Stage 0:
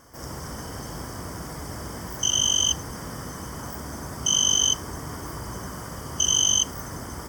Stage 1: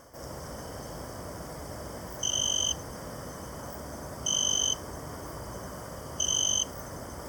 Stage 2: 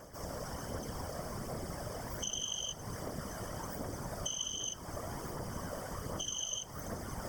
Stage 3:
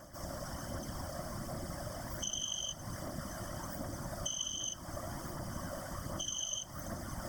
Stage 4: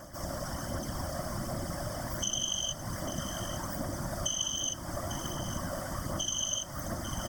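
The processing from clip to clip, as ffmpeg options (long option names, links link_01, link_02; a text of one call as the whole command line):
ffmpeg -i in.wav -af "equalizer=frequency=580:width=2.3:gain=9,areverse,acompressor=mode=upward:threshold=-32dB:ratio=2.5,areverse,volume=-6.5dB" out.wav
ffmpeg -i in.wav -af "aphaser=in_gain=1:out_gain=1:delay=1.8:decay=0.37:speed=1.3:type=triangular,acompressor=threshold=-35dB:ratio=5,afftfilt=real='hypot(re,im)*cos(2*PI*random(0))':imag='hypot(re,im)*sin(2*PI*random(1))':win_size=512:overlap=0.75,volume=5dB" out.wav
ffmpeg -i in.wav -af "superequalizer=7b=0.251:9b=0.708:12b=0.562" out.wav
ffmpeg -i in.wav -af "aecho=1:1:848:0.266,volume=5.5dB" out.wav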